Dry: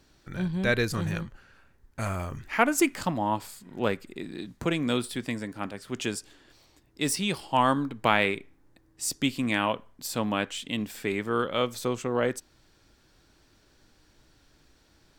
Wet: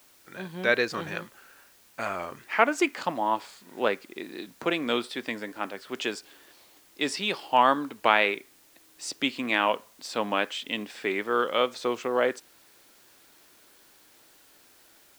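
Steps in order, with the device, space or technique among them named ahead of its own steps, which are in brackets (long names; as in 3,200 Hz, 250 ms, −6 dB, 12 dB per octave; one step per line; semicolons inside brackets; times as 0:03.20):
dictaphone (band-pass filter 370–4,500 Hz; automatic gain control gain up to 4.5 dB; tape wow and flutter; white noise bed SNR 29 dB)
level −1 dB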